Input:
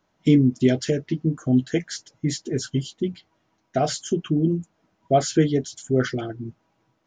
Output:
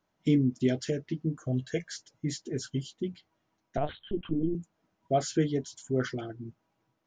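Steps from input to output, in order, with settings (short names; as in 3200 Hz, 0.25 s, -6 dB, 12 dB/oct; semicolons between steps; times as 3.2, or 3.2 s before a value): 1.47–1.92 comb 1.8 ms, depth 59%; 3.77–4.55 LPC vocoder at 8 kHz pitch kept; 5.5–6.2 bell 990 Hz +12 dB 0.23 oct; gain -8 dB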